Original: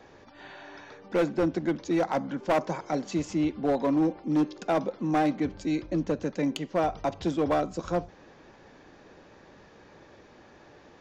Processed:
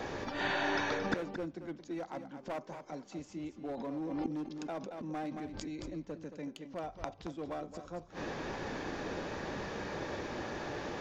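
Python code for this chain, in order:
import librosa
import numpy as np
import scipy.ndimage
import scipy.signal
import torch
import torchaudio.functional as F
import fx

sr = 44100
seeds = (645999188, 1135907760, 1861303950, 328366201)

y = fx.gate_flip(x, sr, shuts_db=-33.0, range_db=-28)
y = y + 10.0 ** (-10.0 / 20.0) * np.pad(y, (int(224 * sr / 1000.0), 0))[:len(y)]
y = fx.pre_swell(y, sr, db_per_s=31.0, at=(3.76, 5.89), fade=0.02)
y = y * librosa.db_to_amplitude(13.0)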